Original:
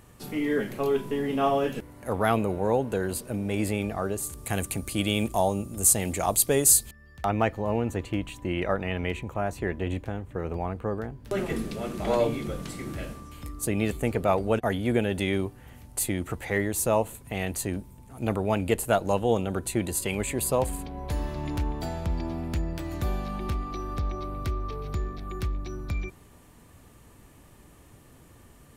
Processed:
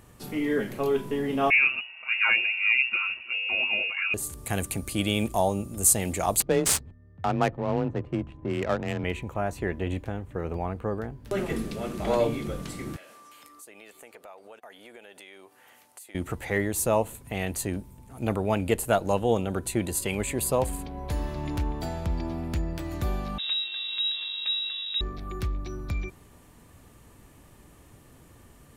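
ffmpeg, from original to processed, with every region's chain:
-filter_complex "[0:a]asettb=1/sr,asplit=3[a][b][c];[a]atrim=end=1.504[d];[b]atrim=start=1.5:end=4.14,asetpts=PTS-STARTPTS,afade=t=in:d=0.004:c=qsin,afade=t=out:st=2.636:d=0.004:c=qsin,equalizer=f=1.1k:w=6.2:g=-9.5,aecho=1:1:7.1:0.74,atrim=end_sample=116424,lowpass=f=2.5k:t=q:w=0.5098,lowpass=f=2.5k:t=q:w=0.6013,lowpass=f=2.5k:t=q:w=0.9,lowpass=f=2.5k:t=q:w=2.563,afreqshift=-2900[e];[c]atrim=start=4.136[f];[d][e]acrossfade=d=0.004:c1=hsin:c2=qsin[g];[g][f]acrossfade=d=0.004:c1=qsin:c2=hsin,asettb=1/sr,asplit=3[h][i][j];[h]atrim=end=6.404[k];[i]atrim=start=6.4:end=9.04,asetpts=PTS-STARTPTS,afade=t=in:d=0.004:c=qsin,afade=t=out:st=2.636:d=0.004:c=qsin,afreqshift=23,adynamicsmooth=sensitivity=3:basefreq=660[l];[j]atrim=start=9.036[m];[k][l]acrossfade=d=0.004:c1=hsin:c2=qsin[n];[n][m]acrossfade=d=0.004:c1=qsin:c2=hsin,asettb=1/sr,asplit=3[o][p][q];[o]atrim=end=12.964[r];[p]atrim=start=12.96:end=16.15,asetpts=PTS-STARTPTS,afade=t=in:d=0.004:c=qsin,afade=t=out:st=3.186:d=0.004:c=qsin,highpass=620,acompressor=threshold=-47dB:ratio=4:attack=3.2:release=140:knee=1:detection=peak[s];[q]atrim=start=16.146[t];[r][s]acrossfade=d=0.004:c1=hsin:c2=qsin[u];[u][t]acrossfade=d=0.004:c1=qsin:c2=hsin,asettb=1/sr,asplit=3[v][w][x];[v]atrim=end=23.384[y];[w]atrim=start=23.38:end=25.01,asetpts=PTS-STARTPTS,afade=t=in:d=0.004:c=qsin,afade=t=out:st=1.626:d=0.004:c=qsin,adynamicsmooth=sensitivity=6.5:basefreq=640,lowpass=f=3.3k:t=q:w=0.5098,lowpass=f=3.3k:t=q:w=0.6013,lowpass=f=3.3k:t=q:w=0.9,lowpass=f=3.3k:t=q:w=2.563,afreqshift=-3900[z];[x]atrim=start=25.006[aa];[y][z]acrossfade=d=0.004:c1=hsin:c2=qsin[ab];[ab][aa]acrossfade=d=0.004:c1=qsin:c2=hsin"

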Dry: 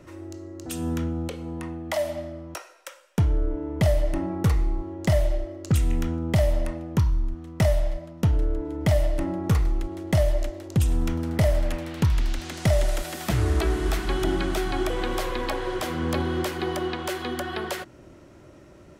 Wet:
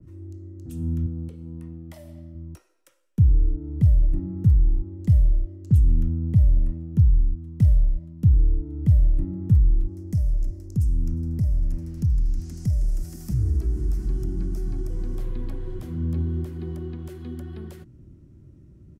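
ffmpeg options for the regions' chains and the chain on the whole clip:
-filter_complex "[0:a]asettb=1/sr,asplit=3[a][b][c];[a]atrim=end=1.064[d];[b]atrim=start=1.06:end=2.35,asetpts=PTS-STARTPTS,afade=t=in:d=0.004:c=qsin,afade=t=out:st=1.286:d=0.004:c=qsin,highpass=f=170:p=1,bandreject=f=6.6k:w=17,asplit=2[e][f];[f]adelay=14,volume=-13.5dB[g];[e][g]amix=inputs=2:normalize=0,atrim=end_sample=56889[h];[c]atrim=start=2.346[i];[d][h]acrossfade=d=0.004:c1=hsin:c2=qsin[j];[j][i]acrossfade=d=0.004:c1=qsin:c2=hsin,asettb=1/sr,asplit=3[k][l][m];[k]atrim=end=9.884[n];[l]atrim=start=9.88:end=15.18,asetpts=PTS-STARTPTS,afade=t=in:d=0.004:c=qsin,afade=t=out:st=5.296:d=0.004:c=qsin,highshelf=f=4.4k:t=q:w=3:g=6.5,acompressor=threshold=-24dB:ratio=2.5:attack=3.2:release=140:knee=1:detection=peak,aecho=1:1:354:0.0708,atrim=end_sample=233730[o];[m]atrim=start=15.176[p];[n][o]acrossfade=d=0.004:c1=hsin:c2=qsin[q];[q][p]acrossfade=d=0.004:c1=qsin:c2=hsin,firequalizer=gain_entry='entry(130,0);entry(590,-28);entry(11000,-19)':delay=0.05:min_phase=1,acrossover=split=170|3000[r][s][t];[s]acompressor=threshold=-36dB:ratio=3[u];[r][u][t]amix=inputs=3:normalize=0,adynamicequalizer=threshold=0.00141:dfrequency=2100:dqfactor=0.7:tfrequency=2100:tqfactor=0.7:attack=5:release=100:ratio=0.375:range=3.5:mode=cutabove:tftype=highshelf,volume=5.5dB"

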